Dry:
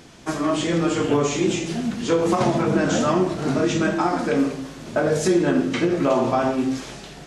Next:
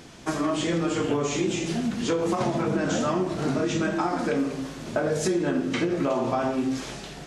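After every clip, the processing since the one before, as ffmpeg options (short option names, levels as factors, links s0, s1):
-af "acompressor=threshold=0.0708:ratio=3"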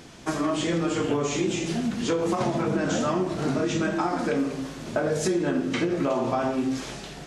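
-af anull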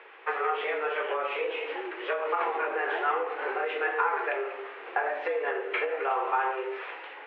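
-af "highpass=f=340:t=q:w=0.5412,highpass=f=340:t=q:w=1.307,lowpass=f=2500:t=q:w=0.5176,lowpass=f=2500:t=q:w=0.7071,lowpass=f=2500:t=q:w=1.932,afreqshift=130,equalizer=f=610:t=o:w=0.79:g=-11.5,volume=1.58"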